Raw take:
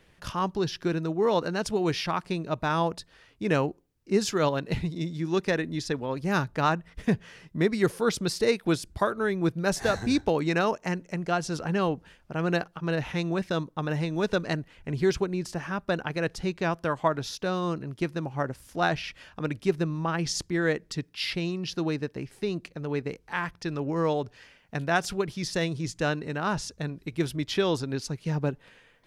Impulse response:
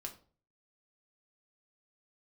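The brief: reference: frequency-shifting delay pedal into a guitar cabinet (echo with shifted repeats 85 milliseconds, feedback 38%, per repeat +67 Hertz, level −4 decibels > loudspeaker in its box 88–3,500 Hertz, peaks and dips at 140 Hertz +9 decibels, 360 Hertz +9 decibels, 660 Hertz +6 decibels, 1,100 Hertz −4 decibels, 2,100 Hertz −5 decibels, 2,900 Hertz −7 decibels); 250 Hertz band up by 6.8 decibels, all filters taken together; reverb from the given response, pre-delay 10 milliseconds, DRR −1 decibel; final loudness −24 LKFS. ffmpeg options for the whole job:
-filter_complex "[0:a]equalizer=frequency=250:width_type=o:gain=3.5,asplit=2[link_01][link_02];[1:a]atrim=start_sample=2205,adelay=10[link_03];[link_02][link_03]afir=irnorm=-1:irlink=0,volume=3.5dB[link_04];[link_01][link_04]amix=inputs=2:normalize=0,asplit=6[link_05][link_06][link_07][link_08][link_09][link_10];[link_06]adelay=85,afreqshift=67,volume=-4dB[link_11];[link_07]adelay=170,afreqshift=134,volume=-12.4dB[link_12];[link_08]adelay=255,afreqshift=201,volume=-20.8dB[link_13];[link_09]adelay=340,afreqshift=268,volume=-29.2dB[link_14];[link_10]adelay=425,afreqshift=335,volume=-37.6dB[link_15];[link_05][link_11][link_12][link_13][link_14][link_15]amix=inputs=6:normalize=0,highpass=88,equalizer=frequency=140:width_type=q:width=4:gain=9,equalizer=frequency=360:width_type=q:width=4:gain=9,equalizer=frequency=660:width_type=q:width=4:gain=6,equalizer=frequency=1100:width_type=q:width=4:gain=-4,equalizer=frequency=2100:width_type=q:width=4:gain=-5,equalizer=frequency=2900:width_type=q:width=4:gain=-7,lowpass=frequency=3500:width=0.5412,lowpass=frequency=3500:width=1.3066,volume=-5.5dB"

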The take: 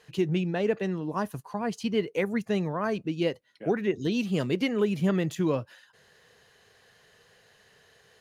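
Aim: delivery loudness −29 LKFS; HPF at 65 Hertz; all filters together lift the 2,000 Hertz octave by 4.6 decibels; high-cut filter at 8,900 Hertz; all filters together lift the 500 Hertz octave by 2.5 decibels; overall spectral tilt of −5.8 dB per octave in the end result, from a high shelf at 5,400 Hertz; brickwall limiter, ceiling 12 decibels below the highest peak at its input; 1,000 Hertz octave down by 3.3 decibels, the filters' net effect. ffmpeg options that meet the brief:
ffmpeg -i in.wav -af "highpass=65,lowpass=8900,equalizer=frequency=500:width_type=o:gain=4.5,equalizer=frequency=1000:width_type=o:gain=-8,equalizer=frequency=2000:width_type=o:gain=8,highshelf=frequency=5400:gain=-4,volume=3dB,alimiter=limit=-19.5dB:level=0:latency=1" out.wav

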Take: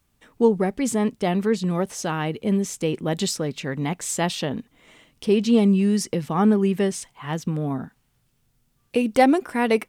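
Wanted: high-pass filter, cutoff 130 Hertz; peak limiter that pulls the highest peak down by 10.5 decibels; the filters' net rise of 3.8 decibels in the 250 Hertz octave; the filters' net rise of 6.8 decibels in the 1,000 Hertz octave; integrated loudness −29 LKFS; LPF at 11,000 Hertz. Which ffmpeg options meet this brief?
ffmpeg -i in.wav -af "highpass=130,lowpass=11000,equalizer=frequency=250:width_type=o:gain=5,equalizer=frequency=1000:width_type=o:gain=9,volume=-7dB,alimiter=limit=-18dB:level=0:latency=1" out.wav

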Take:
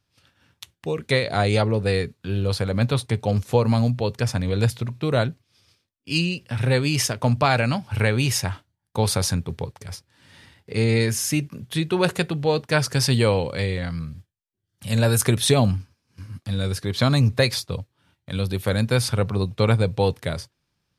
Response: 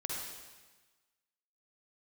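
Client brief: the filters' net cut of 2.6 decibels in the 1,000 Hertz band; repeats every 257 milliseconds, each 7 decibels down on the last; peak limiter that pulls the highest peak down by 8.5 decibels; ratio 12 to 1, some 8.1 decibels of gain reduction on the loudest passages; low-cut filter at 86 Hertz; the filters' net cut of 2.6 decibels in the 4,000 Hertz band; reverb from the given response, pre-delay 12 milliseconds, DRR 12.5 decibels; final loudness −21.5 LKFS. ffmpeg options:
-filter_complex "[0:a]highpass=86,equalizer=frequency=1000:width_type=o:gain=-3.5,equalizer=frequency=4000:width_type=o:gain=-3,acompressor=threshold=-22dB:ratio=12,alimiter=limit=-17.5dB:level=0:latency=1,aecho=1:1:257|514|771|1028|1285:0.447|0.201|0.0905|0.0407|0.0183,asplit=2[link_01][link_02];[1:a]atrim=start_sample=2205,adelay=12[link_03];[link_02][link_03]afir=irnorm=-1:irlink=0,volume=-14.5dB[link_04];[link_01][link_04]amix=inputs=2:normalize=0,volume=7.5dB"

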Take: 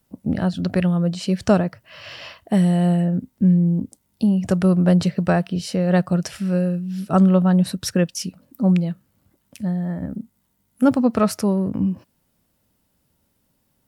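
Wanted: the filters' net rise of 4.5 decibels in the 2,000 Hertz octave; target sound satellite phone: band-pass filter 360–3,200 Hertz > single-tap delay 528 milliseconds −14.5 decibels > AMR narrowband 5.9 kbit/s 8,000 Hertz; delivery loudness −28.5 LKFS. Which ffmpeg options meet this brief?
ffmpeg -i in.wav -af "highpass=360,lowpass=3200,equalizer=frequency=2000:width_type=o:gain=6.5,aecho=1:1:528:0.188,volume=-1dB" -ar 8000 -c:a libopencore_amrnb -b:a 5900 out.amr

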